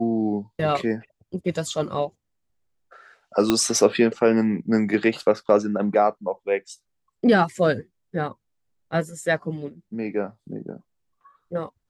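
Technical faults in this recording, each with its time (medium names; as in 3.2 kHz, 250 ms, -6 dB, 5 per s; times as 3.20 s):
3.50 s: pop -5 dBFS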